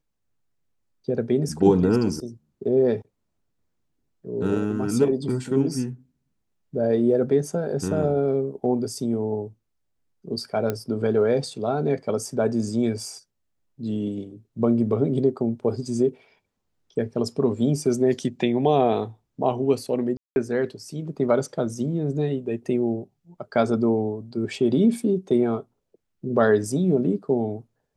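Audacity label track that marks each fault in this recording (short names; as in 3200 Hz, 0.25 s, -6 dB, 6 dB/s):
10.700000	10.700000	pop -12 dBFS
20.170000	20.360000	gap 0.191 s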